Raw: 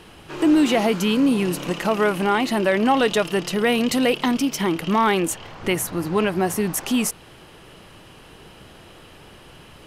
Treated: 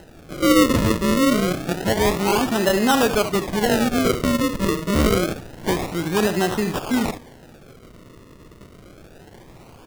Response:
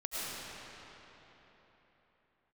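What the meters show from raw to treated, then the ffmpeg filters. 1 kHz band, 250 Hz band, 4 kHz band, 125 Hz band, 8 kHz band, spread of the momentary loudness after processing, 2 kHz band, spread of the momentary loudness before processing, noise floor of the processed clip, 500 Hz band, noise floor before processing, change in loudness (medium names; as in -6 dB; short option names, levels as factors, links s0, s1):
-0.5 dB, 0.0 dB, +1.0 dB, +4.0 dB, 0.0 dB, 7 LU, 0.0 dB, 6 LU, -47 dBFS, +1.0 dB, -46 dBFS, +0.5 dB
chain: -filter_complex "[0:a]aecho=1:1:71:0.335,asplit=2[s0][s1];[1:a]atrim=start_sample=2205,asetrate=66150,aresample=44100[s2];[s1][s2]afir=irnorm=-1:irlink=0,volume=0.0422[s3];[s0][s3]amix=inputs=2:normalize=0,acrusher=samples=38:mix=1:aa=0.000001:lfo=1:lforange=38:lforate=0.27"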